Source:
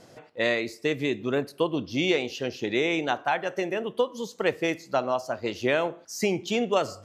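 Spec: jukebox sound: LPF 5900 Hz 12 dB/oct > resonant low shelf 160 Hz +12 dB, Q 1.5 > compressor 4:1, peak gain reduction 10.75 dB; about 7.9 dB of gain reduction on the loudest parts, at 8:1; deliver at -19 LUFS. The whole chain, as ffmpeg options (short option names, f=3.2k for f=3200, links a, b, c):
-af "acompressor=threshold=-27dB:ratio=8,lowpass=5.9k,lowshelf=f=160:t=q:w=1.5:g=12,acompressor=threshold=-36dB:ratio=4,volume=21dB"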